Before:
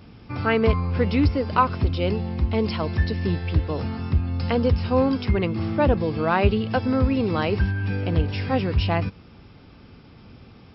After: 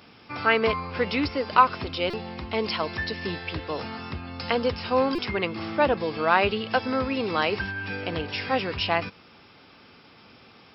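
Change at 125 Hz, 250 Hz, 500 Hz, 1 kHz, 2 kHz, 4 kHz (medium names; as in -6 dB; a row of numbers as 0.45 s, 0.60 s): -14.5 dB, -7.0 dB, -2.0 dB, +2.0 dB, +3.5 dB, +4.0 dB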